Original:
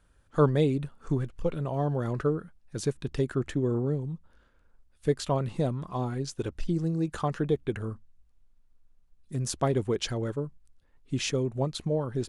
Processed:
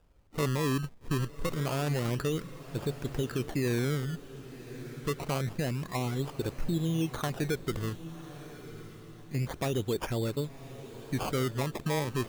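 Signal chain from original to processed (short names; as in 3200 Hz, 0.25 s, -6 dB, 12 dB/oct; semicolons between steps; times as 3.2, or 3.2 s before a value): downsampling 11025 Hz; limiter -22 dBFS, peak gain reduction 10 dB; decimation with a swept rate 21×, swing 100% 0.27 Hz; on a send: diffused feedback echo 1.121 s, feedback 40%, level -13.5 dB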